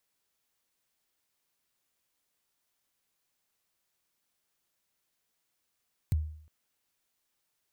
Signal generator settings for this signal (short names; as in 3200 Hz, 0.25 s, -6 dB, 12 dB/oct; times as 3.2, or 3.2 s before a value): kick drum length 0.36 s, from 140 Hz, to 77 Hz, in 21 ms, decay 0.59 s, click on, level -21 dB